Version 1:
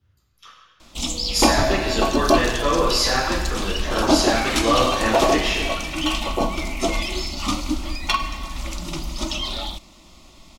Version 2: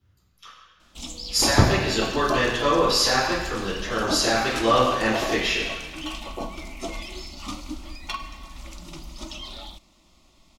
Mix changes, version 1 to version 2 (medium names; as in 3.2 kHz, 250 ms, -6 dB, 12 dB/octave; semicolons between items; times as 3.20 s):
first sound -10.5 dB; second sound: send +11.0 dB